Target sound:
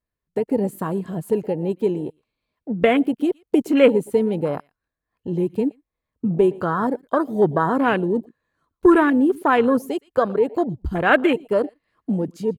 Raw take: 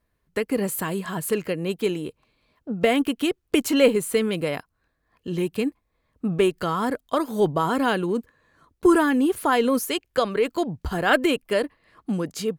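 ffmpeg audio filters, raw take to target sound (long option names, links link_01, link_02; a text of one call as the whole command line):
ffmpeg -i in.wav -filter_complex "[0:a]asplit=2[link_01][link_02];[link_02]adelay=116.6,volume=-20dB,highshelf=frequency=4000:gain=-2.62[link_03];[link_01][link_03]amix=inputs=2:normalize=0,afwtdn=0.0447,volume=3.5dB" out.wav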